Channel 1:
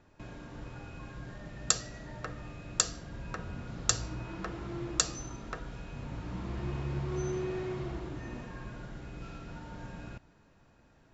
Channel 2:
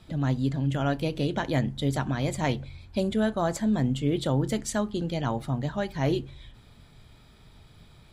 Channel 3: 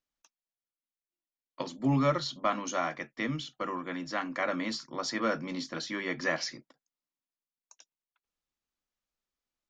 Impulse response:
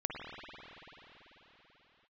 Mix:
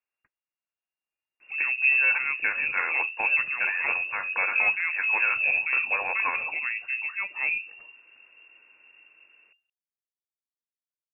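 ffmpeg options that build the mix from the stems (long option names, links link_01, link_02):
-filter_complex "[1:a]adelay=1400,volume=-7.5dB[link_01];[2:a]asubboost=boost=7:cutoff=150,alimiter=limit=-22.5dB:level=0:latency=1:release=116,volume=1dB[link_02];[link_01][link_02]amix=inputs=2:normalize=0,dynaudnorm=framelen=410:gausssize=5:maxgain=5dB,lowpass=frequency=2400:width_type=q:width=0.5098,lowpass=frequency=2400:width_type=q:width=0.6013,lowpass=frequency=2400:width_type=q:width=0.9,lowpass=frequency=2400:width_type=q:width=2.563,afreqshift=-2800"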